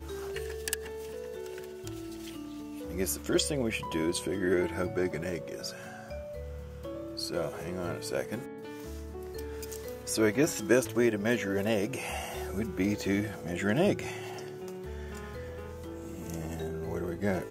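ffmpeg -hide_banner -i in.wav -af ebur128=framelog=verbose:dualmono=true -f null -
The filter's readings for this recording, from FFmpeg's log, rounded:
Integrated loudness:
  I:         -30.1 LUFS
  Threshold: -40.1 LUFS
Loudness range:
  LRA:         7.8 LU
  Threshold: -49.7 LUFS
  LRA low:   -34.4 LUFS
  LRA high:  -26.6 LUFS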